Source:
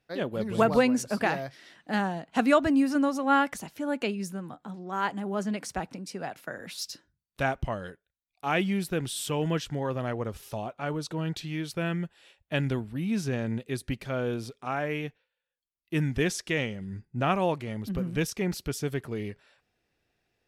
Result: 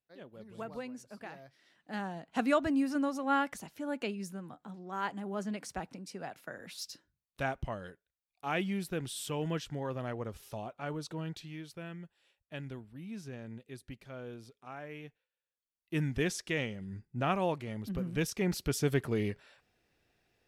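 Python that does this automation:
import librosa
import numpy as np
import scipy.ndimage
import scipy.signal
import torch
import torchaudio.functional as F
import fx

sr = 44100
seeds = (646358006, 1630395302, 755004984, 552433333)

y = fx.gain(x, sr, db=fx.line((1.3, -19.5), (2.28, -6.5), (11.12, -6.5), (11.87, -14.5), (14.88, -14.5), (15.95, -5.0), (18.08, -5.0), (18.96, 2.0)))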